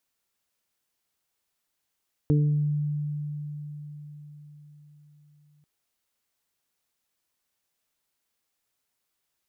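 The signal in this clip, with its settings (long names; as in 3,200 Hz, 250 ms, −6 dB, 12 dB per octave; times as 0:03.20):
harmonic partials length 3.34 s, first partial 148 Hz, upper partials −4/−9.5 dB, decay 4.87 s, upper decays 0.59/0.62 s, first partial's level −18 dB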